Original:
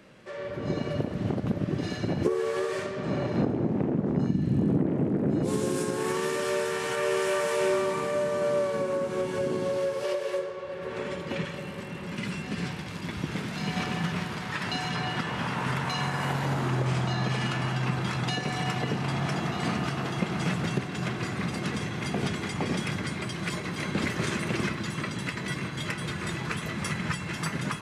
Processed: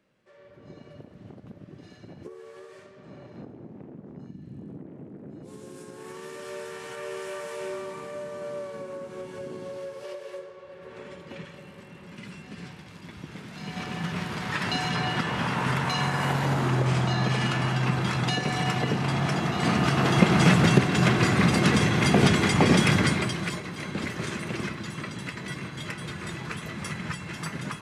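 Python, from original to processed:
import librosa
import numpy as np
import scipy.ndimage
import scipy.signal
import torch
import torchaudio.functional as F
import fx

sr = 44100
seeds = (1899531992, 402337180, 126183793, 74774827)

y = fx.gain(x, sr, db=fx.line((5.49, -17.0), (6.64, -9.0), (13.4, -9.0), (14.48, 3.0), (19.52, 3.0), (20.18, 10.0), (23.06, 10.0), (23.67, -3.0)))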